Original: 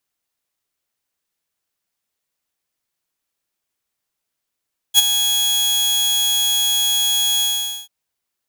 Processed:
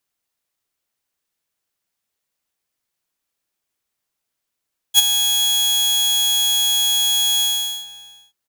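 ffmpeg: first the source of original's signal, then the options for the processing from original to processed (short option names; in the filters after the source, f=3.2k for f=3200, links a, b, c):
-f lavfi -i "aevalsrc='0.668*(2*mod(3330*t,1)-1)':d=2.938:s=44100,afade=t=in:d=0.045,afade=t=out:st=0.045:d=0.022:silence=0.335,afade=t=out:st=2.47:d=0.468"
-filter_complex "[0:a]asplit=2[a][b];[b]adelay=449,volume=-14dB,highshelf=f=4k:g=-10.1[c];[a][c]amix=inputs=2:normalize=0"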